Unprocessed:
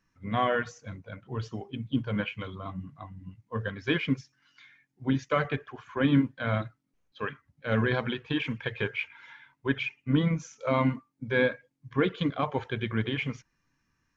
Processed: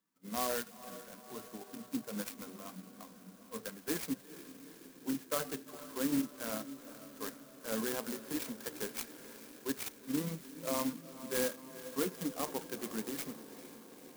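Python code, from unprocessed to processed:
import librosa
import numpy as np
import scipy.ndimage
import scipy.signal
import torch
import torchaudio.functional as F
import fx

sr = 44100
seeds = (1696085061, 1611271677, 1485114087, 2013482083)

p1 = scipy.signal.sosfilt(scipy.signal.butter(6, 180.0, 'highpass', fs=sr, output='sos'), x)
p2 = p1 + fx.echo_diffused(p1, sr, ms=457, feedback_pct=70, wet_db=-14, dry=0)
p3 = fx.clock_jitter(p2, sr, seeds[0], jitter_ms=0.12)
y = F.gain(torch.from_numpy(p3), -8.5).numpy()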